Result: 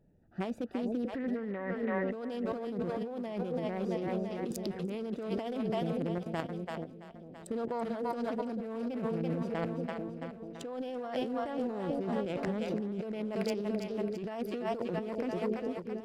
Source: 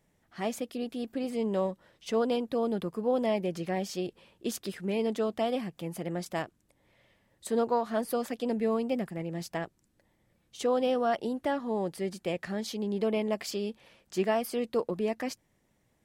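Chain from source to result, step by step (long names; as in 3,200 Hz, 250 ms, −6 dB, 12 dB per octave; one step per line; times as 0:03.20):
adaptive Wiener filter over 41 samples
0:01.12–0:02.11: low-pass with resonance 1,900 Hz, resonance Q 15
on a send: echo with a time of its own for lows and highs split 530 Hz, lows 439 ms, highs 334 ms, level −8.5 dB
0:06.18–0:07.82: on the sum: output level in coarse steps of 11 dB
in parallel at −3 dB: brickwall limiter −23.5 dBFS, peak gain reduction 7 dB
on the sum: compressor whose output falls as the input rises −32 dBFS, ratio −1
level −2.5 dB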